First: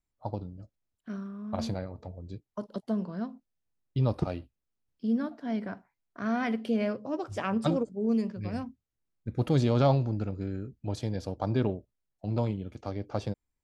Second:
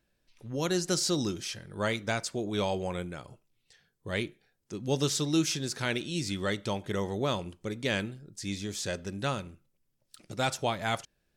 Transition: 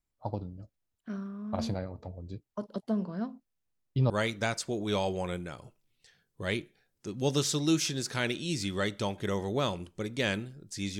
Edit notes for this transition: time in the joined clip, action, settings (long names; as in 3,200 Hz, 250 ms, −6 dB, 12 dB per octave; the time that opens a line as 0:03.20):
first
0:04.10: continue with second from 0:01.76